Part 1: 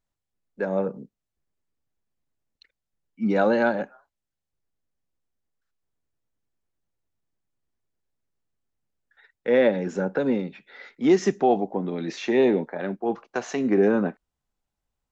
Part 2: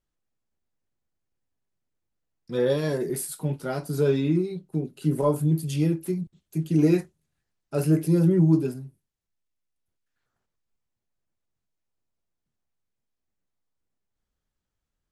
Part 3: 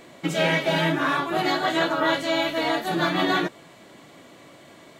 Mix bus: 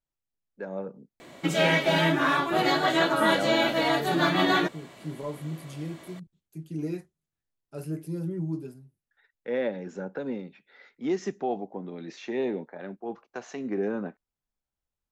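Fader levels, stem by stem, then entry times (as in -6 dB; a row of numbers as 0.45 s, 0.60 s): -9.5 dB, -12.5 dB, -0.5 dB; 0.00 s, 0.00 s, 1.20 s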